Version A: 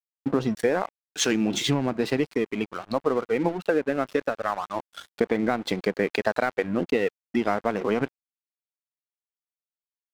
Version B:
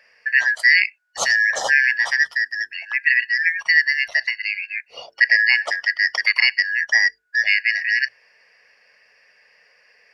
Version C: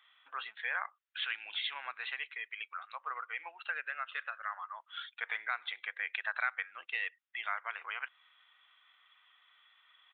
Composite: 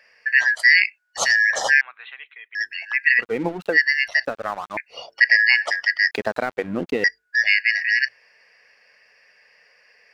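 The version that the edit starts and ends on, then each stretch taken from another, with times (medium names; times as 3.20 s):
B
1.81–2.55 s: from C
3.21–3.75 s: from A, crossfade 0.06 s
4.25–4.77 s: from A
6.11–7.04 s: from A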